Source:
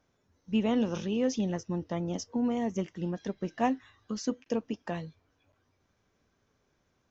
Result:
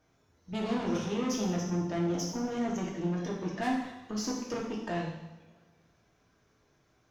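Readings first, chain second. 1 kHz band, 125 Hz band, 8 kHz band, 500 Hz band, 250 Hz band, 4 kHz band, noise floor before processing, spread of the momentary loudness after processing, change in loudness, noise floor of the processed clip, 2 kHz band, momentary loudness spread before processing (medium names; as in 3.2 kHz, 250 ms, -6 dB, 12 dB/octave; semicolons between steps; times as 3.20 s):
-0.5 dB, +1.5 dB, no reading, -1.5 dB, -1.5 dB, +2.0 dB, -75 dBFS, 6 LU, -1.0 dB, -70 dBFS, +2.5 dB, 8 LU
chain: valve stage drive 31 dB, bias 0.3; two-slope reverb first 0.91 s, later 2.5 s, from -21 dB, DRR -3 dB; trim +1 dB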